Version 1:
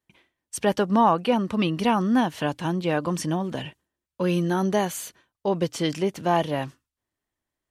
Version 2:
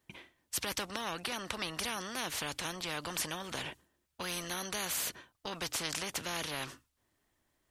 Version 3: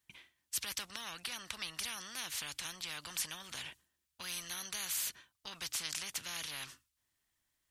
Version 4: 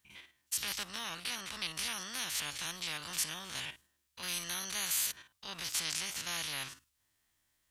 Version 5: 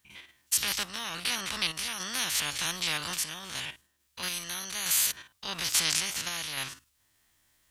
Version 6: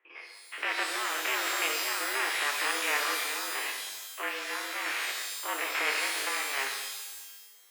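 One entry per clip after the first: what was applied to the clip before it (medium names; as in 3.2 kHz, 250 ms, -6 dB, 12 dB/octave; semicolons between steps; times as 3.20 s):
spectrum-flattening compressor 4:1; trim -5.5 dB
amplifier tone stack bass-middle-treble 5-5-5; trim +5 dB
spectrogram pixelated in time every 50 ms; trim +6 dB
random-step tremolo; trim +9 dB
mistuned SSB +140 Hz 230–2300 Hz; pitch-shifted reverb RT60 1.2 s, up +12 st, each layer -2 dB, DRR 3 dB; trim +5.5 dB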